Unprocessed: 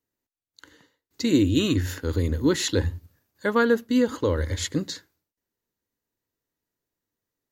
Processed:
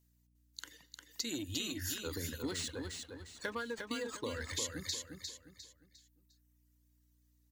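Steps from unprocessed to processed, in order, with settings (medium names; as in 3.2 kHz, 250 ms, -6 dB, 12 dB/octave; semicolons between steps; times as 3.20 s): single-diode clipper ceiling -8.5 dBFS; high-pass 84 Hz 24 dB/octave; pre-emphasis filter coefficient 0.9; hum notches 50/100/150/200/250 Hz; reverb removal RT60 1.6 s; treble shelf 11 kHz -9 dB; compression 6:1, threshold -49 dBFS, peak gain reduction 18.5 dB; hum 60 Hz, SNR 28 dB; feedback delay 353 ms, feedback 35%, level -5.5 dB; 2.42–4.55 s: decimation joined by straight lines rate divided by 3×; trim +12 dB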